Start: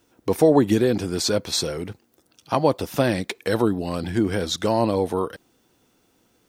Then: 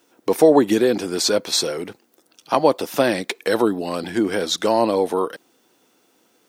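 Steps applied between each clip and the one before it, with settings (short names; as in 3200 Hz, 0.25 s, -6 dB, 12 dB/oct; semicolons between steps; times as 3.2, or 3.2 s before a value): HPF 270 Hz 12 dB/oct; gain +4 dB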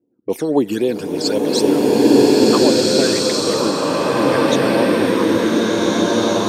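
low-pass opened by the level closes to 330 Hz, open at -16 dBFS; phaser stages 12, 3.8 Hz, lowest notch 610–1600 Hz; bloom reverb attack 1.8 s, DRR -8 dB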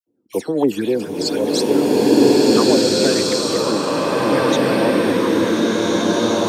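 dispersion lows, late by 71 ms, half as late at 1500 Hz; gain -1 dB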